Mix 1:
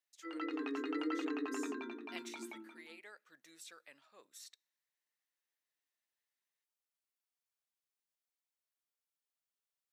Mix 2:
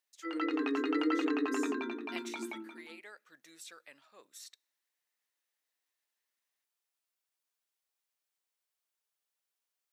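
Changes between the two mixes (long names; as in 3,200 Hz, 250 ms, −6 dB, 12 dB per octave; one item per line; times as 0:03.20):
speech +3.5 dB
background +7.0 dB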